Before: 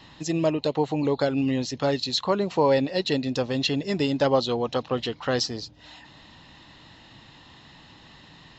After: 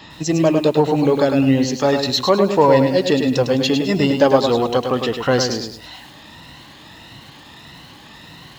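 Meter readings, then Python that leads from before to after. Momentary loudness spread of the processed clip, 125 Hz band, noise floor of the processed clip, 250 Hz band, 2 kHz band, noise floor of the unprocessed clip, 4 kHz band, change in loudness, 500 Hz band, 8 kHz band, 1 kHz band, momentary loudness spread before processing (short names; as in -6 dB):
7 LU, +8.5 dB, -42 dBFS, +9.0 dB, +7.5 dB, -51 dBFS, +6.0 dB, +8.5 dB, +9.0 dB, n/a, +9.0 dB, 6 LU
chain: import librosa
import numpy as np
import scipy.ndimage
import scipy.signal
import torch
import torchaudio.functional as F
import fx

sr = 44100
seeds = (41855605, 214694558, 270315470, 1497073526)

p1 = fx.spec_ripple(x, sr, per_octave=2.0, drift_hz=1.6, depth_db=7)
p2 = 10.0 ** (-21.0 / 20.0) * np.tanh(p1 / 10.0 ** (-21.0 / 20.0))
p3 = p1 + (p2 * 10.0 ** (-7.0 / 20.0))
p4 = fx.highpass(p3, sr, hz=57.0, slope=6)
p5 = fx.dynamic_eq(p4, sr, hz=3900.0, q=1.5, threshold_db=-40.0, ratio=4.0, max_db=-4)
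p6 = fx.echo_crushed(p5, sr, ms=104, feedback_pct=35, bits=8, wet_db=-6)
y = p6 * 10.0 ** (5.0 / 20.0)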